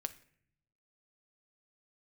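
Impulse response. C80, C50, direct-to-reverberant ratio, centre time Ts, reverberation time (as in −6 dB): 19.5 dB, 16.0 dB, 10.0 dB, 4 ms, 0.60 s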